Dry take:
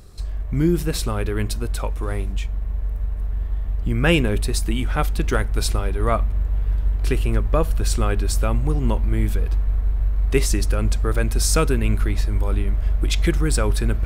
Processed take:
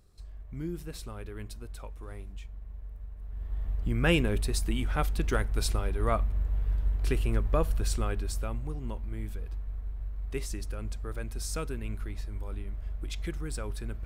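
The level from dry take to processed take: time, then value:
0:03.20 −17.5 dB
0:03.62 −7.5 dB
0:07.73 −7.5 dB
0:08.82 −16 dB

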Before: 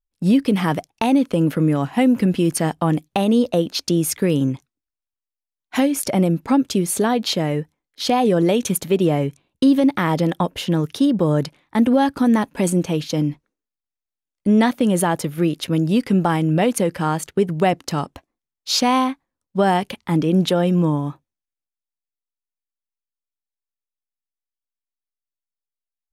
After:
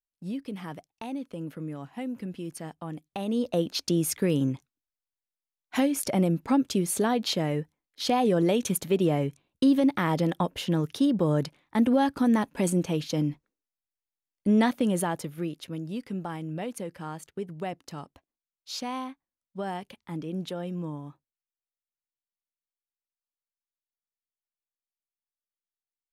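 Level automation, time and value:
0:02.94 −18.5 dB
0:03.63 −6.5 dB
0:14.75 −6.5 dB
0:15.81 −16.5 dB

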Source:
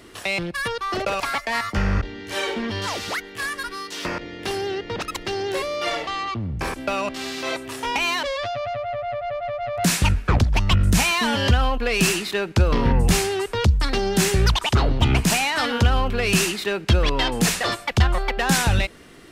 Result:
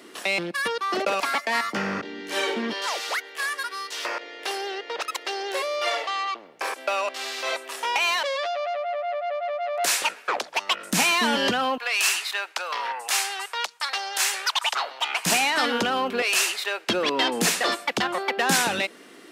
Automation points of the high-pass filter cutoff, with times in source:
high-pass filter 24 dB per octave
210 Hz
from 0:02.73 470 Hz
from 0:10.93 220 Hz
from 0:11.78 750 Hz
from 0:15.26 230 Hz
from 0:16.22 560 Hz
from 0:16.88 230 Hz

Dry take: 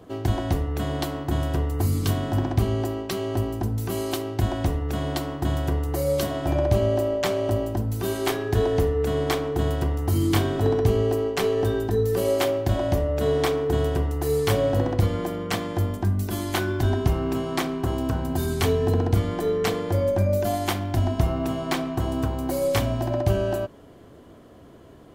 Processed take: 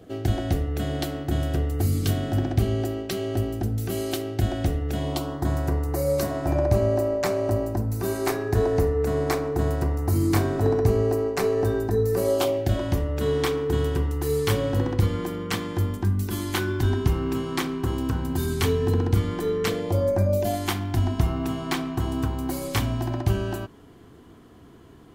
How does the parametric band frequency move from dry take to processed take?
parametric band −14 dB 0.35 octaves
0:04.89 1,000 Hz
0:05.50 3,200 Hz
0:12.22 3,200 Hz
0:12.86 650 Hz
0:19.64 650 Hz
0:20.15 3,500 Hz
0:20.70 580 Hz

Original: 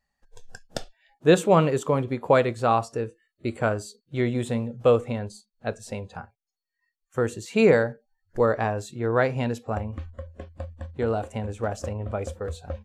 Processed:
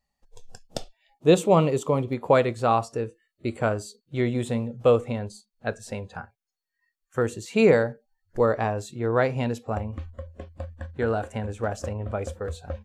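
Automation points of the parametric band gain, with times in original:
parametric band 1,600 Hz 0.38 octaves
−13 dB
from 0:02.13 −2.5 dB
from 0:05.67 +5 dB
from 0:07.22 −2.5 dB
from 0:10.63 +8.5 dB
from 0:11.43 +2.5 dB

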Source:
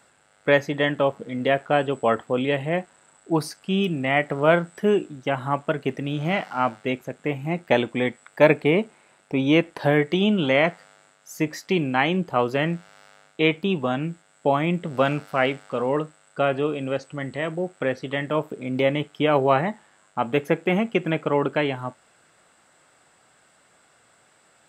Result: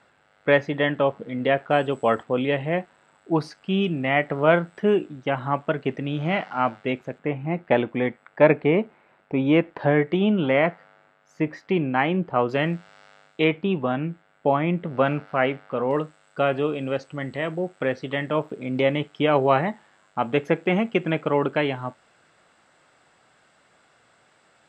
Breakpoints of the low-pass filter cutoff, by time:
3,600 Hz
from 0:01.71 6,700 Hz
from 0:02.23 3,800 Hz
from 0:07.19 2,200 Hz
from 0:12.49 5,100 Hz
from 0:13.44 2,500 Hz
from 0:15.91 5,500 Hz

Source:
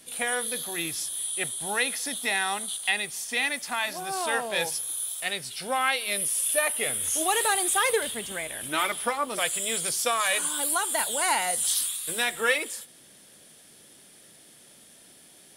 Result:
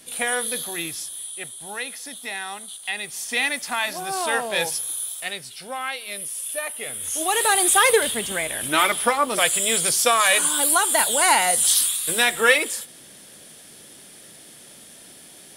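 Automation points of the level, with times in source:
0:00.58 +4 dB
0:01.43 −4.5 dB
0:02.81 −4.5 dB
0:03.26 +4 dB
0:04.87 +4 dB
0:05.73 −4 dB
0:06.85 −4 dB
0:07.65 +7.5 dB

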